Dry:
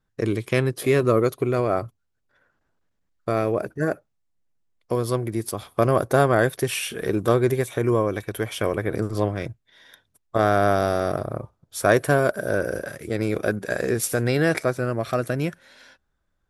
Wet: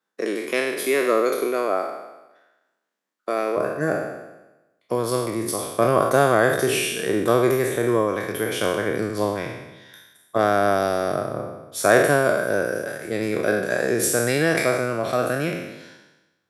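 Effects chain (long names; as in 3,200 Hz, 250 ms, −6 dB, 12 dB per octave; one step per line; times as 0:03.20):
peak hold with a decay on every bin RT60 1.04 s
Bessel high-pass filter 360 Hz, order 8, from 0:03.56 160 Hz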